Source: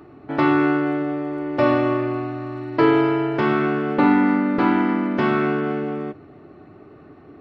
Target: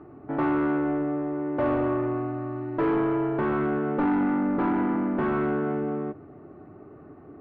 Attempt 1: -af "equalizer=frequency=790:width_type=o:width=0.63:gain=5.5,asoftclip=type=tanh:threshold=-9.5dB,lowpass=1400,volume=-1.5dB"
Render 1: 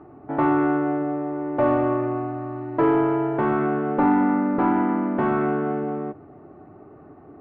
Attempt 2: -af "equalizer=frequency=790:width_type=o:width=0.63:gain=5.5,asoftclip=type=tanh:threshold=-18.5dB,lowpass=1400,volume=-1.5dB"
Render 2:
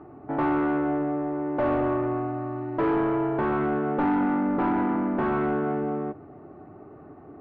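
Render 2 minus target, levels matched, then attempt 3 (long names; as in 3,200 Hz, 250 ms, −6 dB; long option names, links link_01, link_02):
1,000 Hz band +2.5 dB
-af "asoftclip=type=tanh:threshold=-18.5dB,lowpass=1400,volume=-1.5dB"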